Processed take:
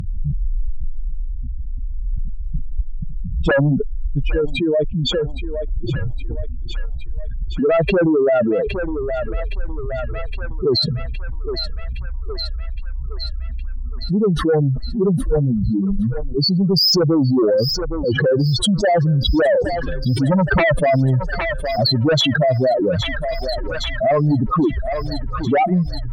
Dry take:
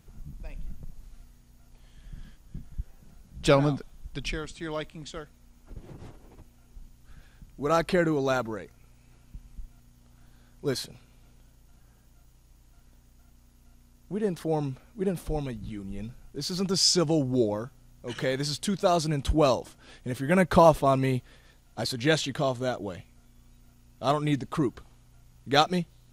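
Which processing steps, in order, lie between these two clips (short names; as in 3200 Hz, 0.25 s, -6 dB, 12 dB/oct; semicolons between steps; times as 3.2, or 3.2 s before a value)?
spectral contrast raised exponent 3.8; dynamic EQ 530 Hz, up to +5 dB, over -37 dBFS, Q 2.9; in parallel at -2 dB: limiter -20 dBFS, peak gain reduction 13.5 dB; on the sum: sine folder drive 7 dB, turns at -7 dBFS; on a send: thinning echo 0.815 s, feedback 67%, high-pass 750 Hz, level -19 dB; on the sum: fast leveller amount 70%; gain -5.5 dB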